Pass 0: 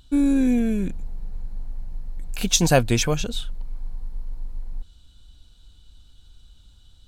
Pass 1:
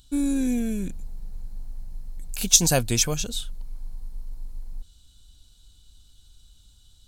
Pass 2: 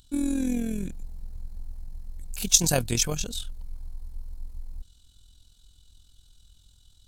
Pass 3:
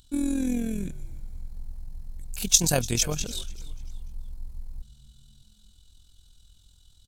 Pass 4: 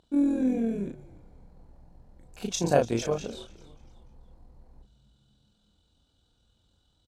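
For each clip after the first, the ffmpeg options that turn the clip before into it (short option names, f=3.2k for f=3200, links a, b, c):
-af "bass=f=250:g=2,treble=f=4k:g=13,volume=-6dB"
-af "tremolo=f=42:d=0.621"
-filter_complex "[0:a]asplit=4[a][b][c][d];[b]adelay=293,afreqshift=-78,volume=-19dB[e];[c]adelay=586,afreqshift=-156,volume=-27.4dB[f];[d]adelay=879,afreqshift=-234,volume=-35.8dB[g];[a][e][f][g]amix=inputs=4:normalize=0"
-filter_complex "[0:a]bandpass=f=530:t=q:w=0.91:csg=0,asplit=2[a][b];[b]adelay=35,volume=-4dB[c];[a][c]amix=inputs=2:normalize=0,volume=5dB"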